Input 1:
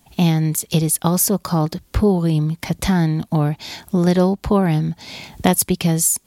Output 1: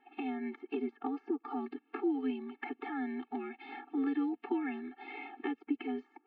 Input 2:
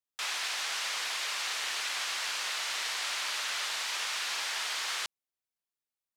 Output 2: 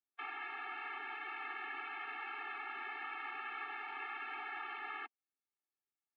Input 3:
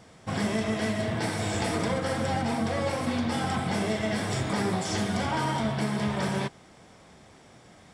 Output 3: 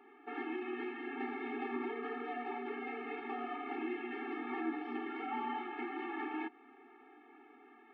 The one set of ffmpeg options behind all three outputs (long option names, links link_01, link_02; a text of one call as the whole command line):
ffmpeg -i in.wav -filter_complex "[0:a]acrossover=split=320|1900[link_01][link_02][link_03];[link_01]acompressor=threshold=-22dB:ratio=4[link_04];[link_02]acompressor=threshold=-38dB:ratio=4[link_05];[link_03]acompressor=threshold=-39dB:ratio=4[link_06];[link_04][link_05][link_06]amix=inputs=3:normalize=0,highpass=frequency=190:width_type=q:width=0.5412,highpass=frequency=190:width_type=q:width=1.307,lowpass=frequency=2600:width_type=q:width=0.5176,lowpass=frequency=2600:width_type=q:width=0.7071,lowpass=frequency=2600:width_type=q:width=1.932,afreqshift=-74,afftfilt=real='re*eq(mod(floor(b*sr/1024/230),2),1)':imag='im*eq(mod(floor(b*sr/1024/230),2),1)':win_size=1024:overlap=0.75" out.wav